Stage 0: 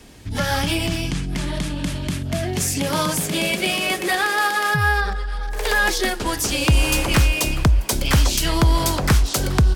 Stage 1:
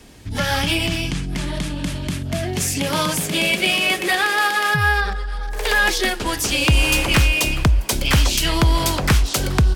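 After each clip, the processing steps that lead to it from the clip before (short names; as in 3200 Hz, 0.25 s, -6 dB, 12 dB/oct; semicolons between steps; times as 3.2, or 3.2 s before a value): dynamic EQ 2700 Hz, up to +5 dB, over -34 dBFS, Q 1.3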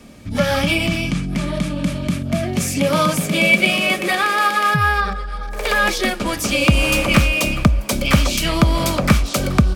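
small resonant body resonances 210/570/1200/2300 Hz, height 11 dB, ringing for 30 ms; gain -2 dB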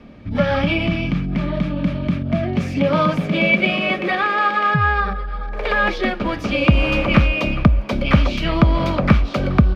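air absorption 310 m; gain +1 dB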